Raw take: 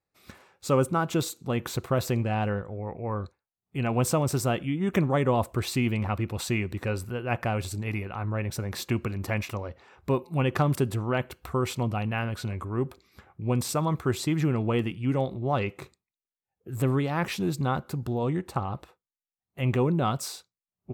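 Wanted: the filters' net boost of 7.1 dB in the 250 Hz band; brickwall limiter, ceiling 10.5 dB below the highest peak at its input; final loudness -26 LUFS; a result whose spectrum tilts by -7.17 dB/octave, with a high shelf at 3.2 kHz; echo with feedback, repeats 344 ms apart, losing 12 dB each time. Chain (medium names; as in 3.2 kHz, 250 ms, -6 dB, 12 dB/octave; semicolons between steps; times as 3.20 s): peaking EQ 250 Hz +9 dB; treble shelf 3.2 kHz -7.5 dB; peak limiter -18 dBFS; feedback delay 344 ms, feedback 25%, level -12 dB; trim +2.5 dB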